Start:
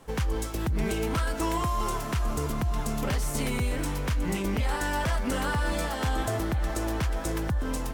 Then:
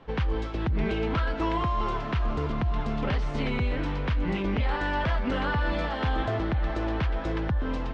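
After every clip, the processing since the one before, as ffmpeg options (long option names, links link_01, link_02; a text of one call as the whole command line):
ffmpeg -i in.wav -af "lowpass=frequency=3800:width=0.5412,lowpass=frequency=3800:width=1.3066,volume=1dB" out.wav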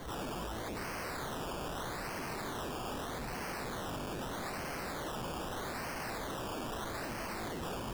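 ffmpeg -i in.wav -af "acrusher=samples=17:mix=1:aa=0.000001:lfo=1:lforange=10.2:lforate=0.8,aeval=exprs='0.0188*(abs(mod(val(0)/0.0188+3,4)-2)-1)':channel_layout=same,alimiter=level_in=19dB:limit=-24dB:level=0:latency=1,volume=-19dB,volume=7.5dB" out.wav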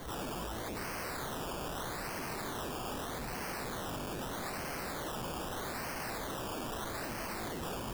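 ffmpeg -i in.wav -af "crystalizer=i=0.5:c=0" out.wav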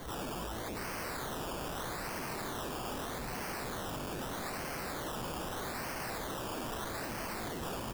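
ffmpeg -i in.wav -af "aecho=1:1:798:0.224" out.wav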